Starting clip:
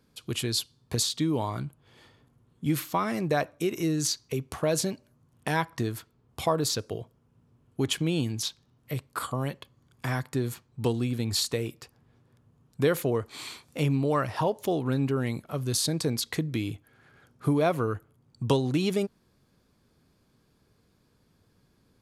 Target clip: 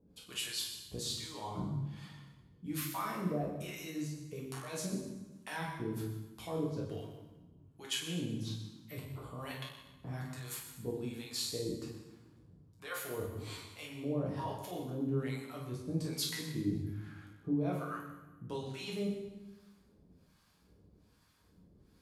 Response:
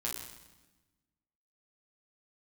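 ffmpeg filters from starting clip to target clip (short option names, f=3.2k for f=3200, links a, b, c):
-filter_complex "[0:a]areverse,acompressor=threshold=-34dB:ratio=6,areverse,acrossover=split=700[a][b];[a]aeval=exprs='val(0)*(1-1/2+1/2*cos(2*PI*1.2*n/s))':c=same[c];[b]aeval=exprs='val(0)*(1-1/2-1/2*cos(2*PI*1.2*n/s))':c=same[d];[c][d]amix=inputs=2:normalize=0[e];[1:a]atrim=start_sample=2205[f];[e][f]afir=irnorm=-1:irlink=0,volume=1.5dB"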